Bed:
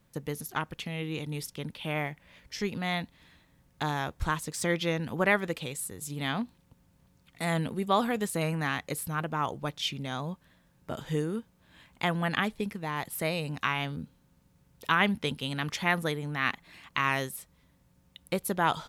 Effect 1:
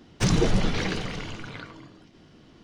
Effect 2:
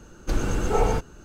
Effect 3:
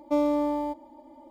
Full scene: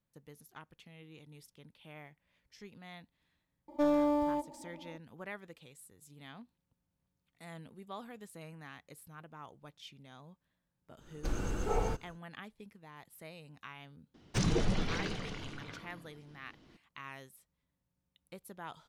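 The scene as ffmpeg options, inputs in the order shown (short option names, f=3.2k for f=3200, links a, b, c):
-filter_complex "[0:a]volume=-19.5dB[a];[3:a]asoftclip=type=tanh:threshold=-18dB,atrim=end=1.3,asetpts=PTS-STARTPTS,volume=-2.5dB,afade=t=in:d=0.004:c=hsin,afade=t=out:st=1.296:d=0.004:c=hsin,adelay=3680[b];[2:a]atrim=end=1.24,asetpts=PTS-STARTPTS,volume=-10.5dB,afade=t=in:d=0.1,afade=t=out:st=1.14:d=0.1,adelay=10960[c];[1:a]atrim=end=2.63,asetpts=PTS-STARTPTS,volume=-8.5dB,afade=t=in:d=0.004:c=hsin,afade=t=out:st=2.626:d=0.004:c=hsin,adelay=14140[d];[a][b][c][d]amix=inputs=4:normalize=0"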